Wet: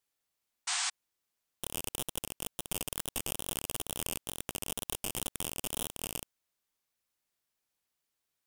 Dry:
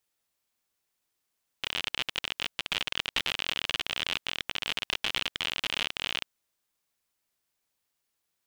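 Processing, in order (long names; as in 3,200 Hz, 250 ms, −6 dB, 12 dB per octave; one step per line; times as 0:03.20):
stylus tracing distortion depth 0.4 ms
tape wow and flutter 94 cents
sound drawn into the spectrogram noise, 0:00.67–0:00.90, 690–9,200 Hz −26 dBFS
in parallel at +1 dB: output level in coarse steps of 12 dB
on the sum: level −9 dB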